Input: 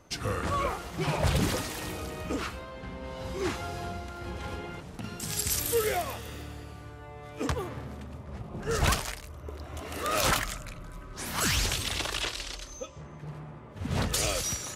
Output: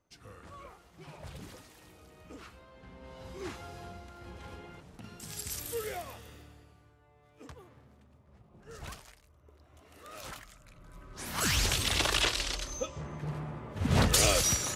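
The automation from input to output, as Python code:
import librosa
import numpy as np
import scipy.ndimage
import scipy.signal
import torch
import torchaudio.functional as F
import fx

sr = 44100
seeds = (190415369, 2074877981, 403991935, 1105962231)

y = fx.gain(x, sr, db=fx.line((1.94, -20.0), (3.11, -9.5), (6.23, -9.5), (7.01, -19.0), (10.52, -19.0), (10.98, -7.0), (12.08, 4.0)))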